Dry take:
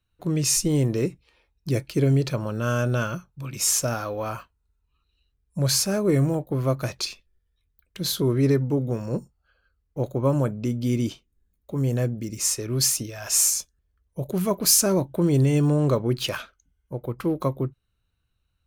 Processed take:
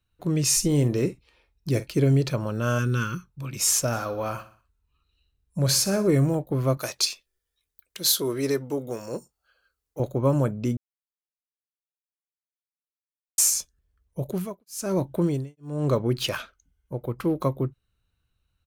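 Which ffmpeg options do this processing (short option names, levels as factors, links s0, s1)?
-filter_complex "[0:a]asettb=1/sr,asplit=3[s0][s1][s2];[s0]atrim=end=0.534[s3];[s1]atrim=start=0.53:end=1.93,asetpts=PTS-STARTPTS,afade=t=in:d=0.004:c=qsin,afade=t=out:st=1.396:d=0.004:c=qsin,asplit=2[s4][s5];[s5]adelay=48,volume=0.2[s6];[s4][s6]amix=inputs=2:normalize=0,atrim=end_sample=61740[s7];[s2]atrim=start=1.926[s8];[s3][s7]acrossfade=d=0.004:c1=hsin:c2=qsin[s9];[s9][s8]acrossfade=d=0.004:c1=qsin:c2=hsin,asplit=3[s10][s11][s12];[s10]afade=t=out:st=2.78:d=0.02[s13];[s11]asuperstop=centerf=670:order=4:qfactor=1.1,afade=t=in:st=2.78:d=0.02,afade=t=out:st=3.29:d=0.02[s14];[s12]afade=t=in:st=3.29:d=0.02[s15];[s13][s14][s15]amix=inputs=3:normalize=0,asplit=3[s16][s17][s18];[s16]afade=t=out:st=3.92:d=0.02[s19];[s17]aecho=1:1:61|122|183|244:0.2|0.0918|0.0422|0.0194,afade=t=in:st=3.92:d=0.02,afade=t=out:st=6.07:d=0.02[s20];[s18]afade=t=in:st=6.07:d=0.02[s21];[s19][s20][s21]amix=inputs=3:normalize=0,asettb=1/sr,asplit=3[s22][s23][s24];[s22]atrim=end=6.774[s25];[s23]atrim=start=6.77:end=10,asetpts=PTS-STARTPTS,afade=t=in:d=0.004:c=qsin,afade=t=out:st=3.226:d=0.004:c=qsin,bass=f=250:g=-15,treble=f=4000:g=8[s26];[s24]atrim=start=9.996[s27];[s25][s26]acrossfade=d=0.004:c1=hsin:c2=qsin[s28];[s28][s27]acrossfade=d=0.004:c1=qsin:c2=hsin,asettb=1/sr,asplit=3[s29][s30][s31];[s29]atrim=end=14.204[s32];[s30]atrim=start=14.2:end=16.15,asetpts=PTS-STARTPTS,afade=t=in:d=0.004:c=qsin,afade=t=out:st=1.946:d=0.004:c=qsin,tremolo=f=1.1:d=1[s33];[s31]atrim=start=16.146[s34];[s32][s33]acrossfade=d=0.004:c1=hsin:c2=qsin[s35];[s35][s34]acrossfade=d=0.004:c1=qsin:c2=hsin,asplit=3[s36][s37][s38];[s36]atrim=end=10.77,asetpts=PTS-STARTPTS,afade=t=out:st=10.766:d=0.004:c=hsin[s39];[s37]atrim=start=10.77:end=13.38,asetpts=PTS-STARTPTS,volume=0[s40];[s38]atrim=start=13.38,asetpts=PTS-STARTPTS,afade=t=in:d=0.004:c=hsin[s41];[s39][s40][s41]concat=n=3:v=0:a=1"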